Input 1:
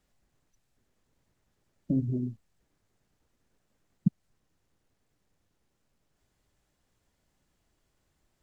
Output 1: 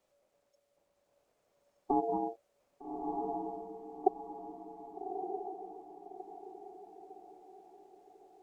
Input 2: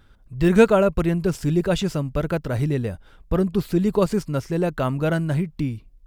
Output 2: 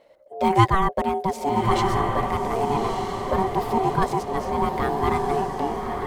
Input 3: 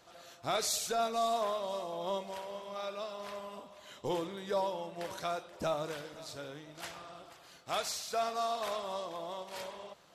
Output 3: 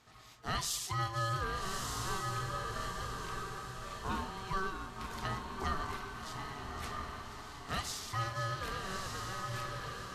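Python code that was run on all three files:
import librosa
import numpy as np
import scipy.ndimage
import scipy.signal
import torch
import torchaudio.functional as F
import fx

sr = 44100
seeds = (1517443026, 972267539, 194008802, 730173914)

y = x * np.sin(2.0 * np.pi * 570.0 * np.arange(len(x)) / sr)
y = fx.echo_diffused(y, sr, ms=1227, feedback_pct=42, wet_db=-3.5)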